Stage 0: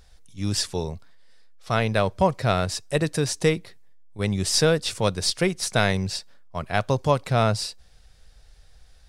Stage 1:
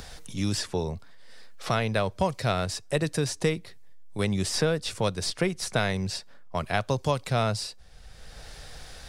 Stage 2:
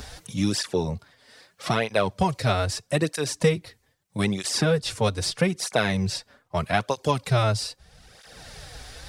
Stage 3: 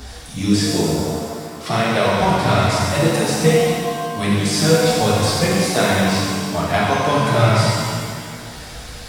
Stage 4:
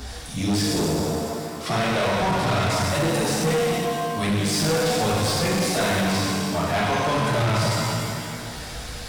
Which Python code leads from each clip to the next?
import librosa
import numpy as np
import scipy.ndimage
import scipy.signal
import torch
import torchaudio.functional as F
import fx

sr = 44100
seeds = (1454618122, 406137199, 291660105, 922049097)

y1 = fx.band_squash(x, sr, depth_pct=70)
y1 = F.gain(torch.from_numpy(y1), -4.0).numpy()
y2 = fx.flanger_cancel(y1, sr, hz=0.79, depth_ms=6.3)
y2 = F.gain(torch.from_numpy(y2), 6.0).numpy()
y3 = fx.rev_shimmer(y2, sr, seeds[0], rt60_s=2.1, semitones=7, shimmer_db=-8, drr_db=-6.5)
y4 = 10.0 ** (-18.5 / 20.0) * np.tanh(y3 / 10.0 ** (-18.5 / 20.0))